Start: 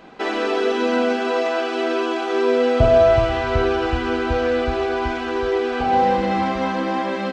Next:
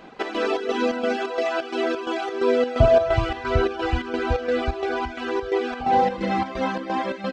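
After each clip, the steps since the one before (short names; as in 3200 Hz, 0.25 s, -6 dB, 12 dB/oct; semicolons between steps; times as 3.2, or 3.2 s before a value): reverb removal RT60 0.83 s; chopper 2.9 Hz, depth 60%, duty 65%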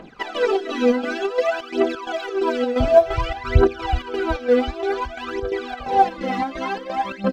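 phaser 0.55 Hz, delay 4.2 ms, feedback 76%; gain -3 dB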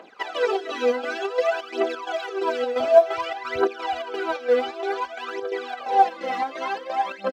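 Chebyshev high-pass 520 Hz, order 2; echo 1.035 s -21.5 dB; gain -1 dB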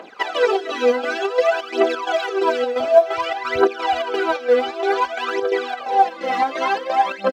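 vocal rider within 4 dB 0.5 s; gain +4.5 dB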